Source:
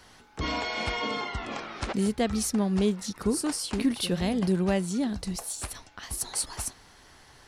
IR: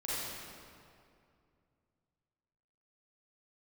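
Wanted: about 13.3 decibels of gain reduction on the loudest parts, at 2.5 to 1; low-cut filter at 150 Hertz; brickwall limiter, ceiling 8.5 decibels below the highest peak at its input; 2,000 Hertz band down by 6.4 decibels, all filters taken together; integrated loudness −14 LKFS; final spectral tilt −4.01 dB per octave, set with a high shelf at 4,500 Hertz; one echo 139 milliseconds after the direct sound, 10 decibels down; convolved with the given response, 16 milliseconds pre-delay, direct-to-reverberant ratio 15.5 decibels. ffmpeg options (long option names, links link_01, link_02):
-filter_complex "[0:a]highpass=150,equalizer=frequency=2000:width_type=o:gain=-7,highshelf=frequency=4500:gain=-4,acompressor=threshold=-42dB:ratio=2.5,alimiter=level_in=9dB:limit=-24dB:level=0:latency=1,volume=-9dB,aecho=1:1:139:0.316,asplit=2[link_01][link_02];[1:a]atrim=start_sample=2205,adelay=16[link_03];[link_02][link_03]afir=irnorm=-1:irlink=0,volume=-20.5dB[link_04];[link_01][link_04]amix=inputs=2:normalize=0,volume=28dB"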